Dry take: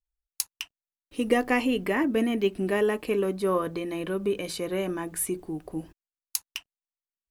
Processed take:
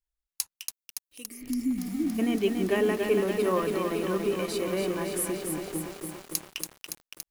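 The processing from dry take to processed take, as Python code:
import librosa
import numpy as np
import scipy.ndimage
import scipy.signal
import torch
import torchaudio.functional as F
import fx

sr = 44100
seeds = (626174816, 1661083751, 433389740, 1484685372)

y = fx.pre_emphasis(x, sr, coefficient=0.9, at=(0.56, 1.41), fade=0.02)
y = fx.spec_repair(y, sr, seeds[0], start_s=1.33, length_s=0.84, low_hz=340.0, high_hz=4500.0, source='before')
y = fx.echo_crushed(y, sr, ms=283, feedback_pct=80, bits=7, wet_db=-4.5)
y = y * librosa.db_to_amplitude(-1.5)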